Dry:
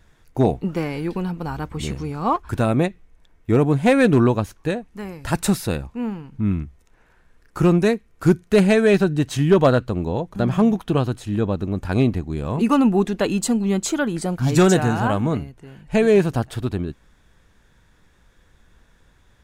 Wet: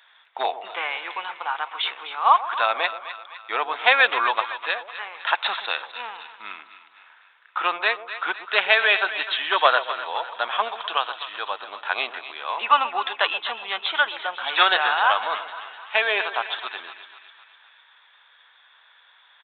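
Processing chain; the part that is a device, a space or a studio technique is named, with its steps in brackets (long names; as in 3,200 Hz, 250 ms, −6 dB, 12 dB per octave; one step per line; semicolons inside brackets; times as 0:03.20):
0:10.68–0:11.52: high-pass filter 330 Hz 6 dB per octave
musical greeting card (downsampling to 8,000 Hz; high-pass filter 860 Hz 24 dB per octave; parametric band 3,500 Hz +7.5 dB 0.35 octaves)
echo with a time of its own for lows and highs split 970 Hz, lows 128 ms, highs 253 ms, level −12 dB
level +7.5 dB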